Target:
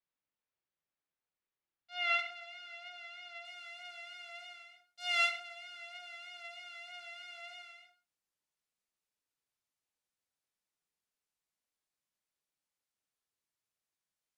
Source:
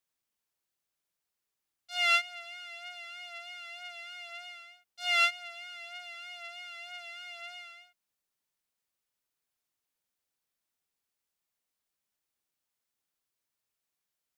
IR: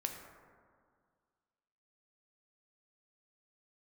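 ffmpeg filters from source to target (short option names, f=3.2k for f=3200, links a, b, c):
-filter_complex "[0:a]asetnsamples=n=441:p=0,asendcmd='2.19 lowpass f 5300;3.45 lowpass f 11000',lowpass=3k[a];[1:a]atrim=start_sample=2205,atrim=end_sample=6174[b];[a][b]afir=irnorm=-1:irlink=0,volume=-4dB"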